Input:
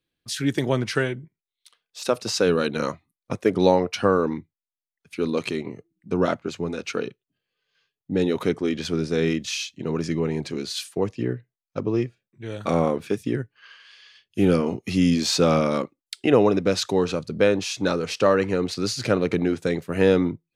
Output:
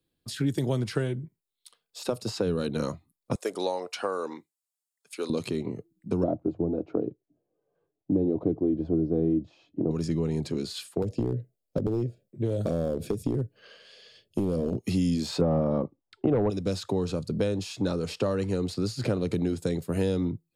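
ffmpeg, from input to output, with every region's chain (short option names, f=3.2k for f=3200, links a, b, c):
-filter_complex "[0:a]asettb=1/sr,asplit=3[a][b][c];[a]atrim=end=3.354[d];[b]atrim=start=3.35:end=5.3,asetpts=PTS-STARTPTS,afade=t=in:d=0.004:c=qsin,afade=t=out:st=1.946:d=0.004:c=qsin,highpass=630,equalizer=f=7.7k:w=0.91:g=8[e];[c]atrim=start=5.296[f];[d][e]acrossfade=d=0.004:c1=hsin:c2=qsin[g];[g][f]acrossfade=d=0.004:c1=qsin:c2=hsin,asettb=1/sr,asplit=3[h][i][j];[h]atrim=end=6.234[k];[i]atrim=start=6.23:end=9.91,asetpts=PTS-STARTPTS,afade=t=in:d=0.004:c=qsin,afade=t=out:st=3.676:d=0.004:c=qsin,lowpass=f=680:t=q:w=3.4,equalizer=f=310:w=3.7:g=13.5[l];[j]atrim=start=9.906[m];[k][l]acrossfade=d=0.004:c1=hsin:c2=qsin[n];[n][m]acrossfade=d=0.004:c1=qsin:c2=hsin,asettb=1/sr,asplit=3[o][p][q];[o]atrim=end=11.024[r];[p]atrim=start=11.02:end=14.78,asetpts=PTS-STARTPTS,afade=t=in:d=0.004:c=qsin,afade=t=out:st=3.756:d=0.004:c=qsin,lowshelf=f=770:t=q:w=3:g=8,acompressor=threshold=-20dB:ratio=4:attack=3.2:release=140:knee=1:detection=peak,asoftclip=type=hard:threshold=-17.5dB[s];[q]atrim=start=14.776[t];[r][s]acrossfade=d=0.004:c1=hsin:c2=qsin[u];[u][t]acrossfade=d=0.004:c1=qsin:c2=hsin,asettb=1/sr,asplit=3[v][w][x];[v]atrim=end=15.414[y];[w]atrim=start=15.41:end=16.5,asetpts=PTS-STARTPTS,afade=t=in:d=0.004:c=qsin,afade=t=out:st=1.086:d=0.004:c=qsin,lowpass=f=850:t=q:w=1.6,aeval=exprs='0.708*sin(PI/2*1.41*val(0)/0.708)':c=same[z];[x]atrim=start=16.496[aa];[y][z]acrossfade=d=0.004:c1=hsin:c2=qsin[ab];[ab][aa]acrossfade=d=0.004:c1=qsin:c2=hsin,equalizer=f=2.1k:w=0.7:g=-10.5,bandreject=f=6k:w=7.8,acrossover=split=140|3200[ac][ad][ae];[ac]acompressor=threshold=-35dB:ratio=4[af];[ad]acompressor=threshold=-32dB:ratio=4[ag];[ae]acompressor=threshold=-47dB:ratio=4[ah];[af][ag][ah]amix=inputs=3:normalize=0,volume=4.5dB"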